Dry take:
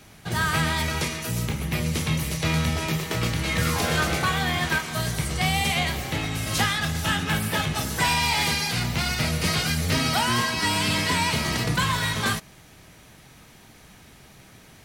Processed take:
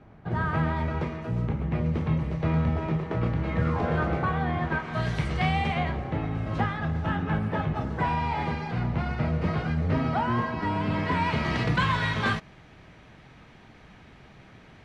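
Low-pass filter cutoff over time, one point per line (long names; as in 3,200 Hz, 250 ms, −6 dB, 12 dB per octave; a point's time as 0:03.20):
0:04.71 1,100 Hz
0:05.16 2,900 Hz
0:06.06 1,100 Hz
0:10.85 1,100 Hz
0:11.63 2,700 Hz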